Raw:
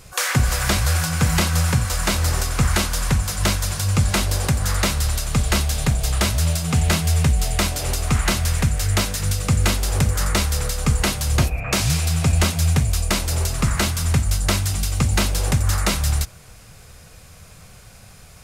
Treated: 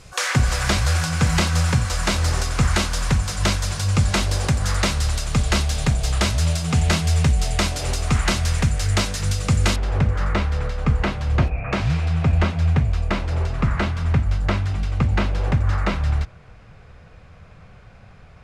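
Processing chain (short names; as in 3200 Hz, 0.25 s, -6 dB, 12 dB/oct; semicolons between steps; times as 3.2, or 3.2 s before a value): LPF 7400 Hz 12 dB/oct, from 9.76 s 2200 Hz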